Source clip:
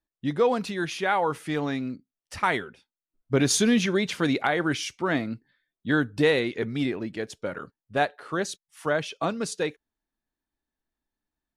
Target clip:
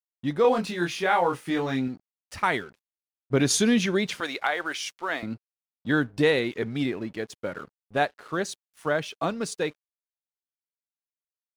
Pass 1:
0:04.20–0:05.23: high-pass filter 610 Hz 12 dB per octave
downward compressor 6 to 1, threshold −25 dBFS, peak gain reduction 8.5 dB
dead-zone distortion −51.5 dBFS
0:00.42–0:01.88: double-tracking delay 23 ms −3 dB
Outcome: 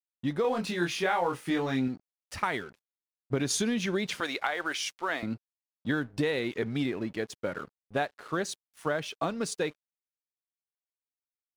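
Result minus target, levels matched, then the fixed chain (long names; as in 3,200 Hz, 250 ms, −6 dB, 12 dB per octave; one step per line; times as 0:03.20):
downward compressor: peak gain reduction +8.5 dB
0:04.20–0:05.23: high-pass filter 610 Hz 12 dB per octave
dead-zone distortion −51.5 dBFS
0:00.42–0:01.88: double-tracking delay 23 ms −3 dB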